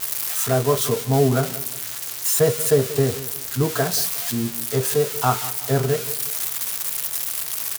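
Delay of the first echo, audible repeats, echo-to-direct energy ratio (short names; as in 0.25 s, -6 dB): 0.181 s, 2, -15.5 dB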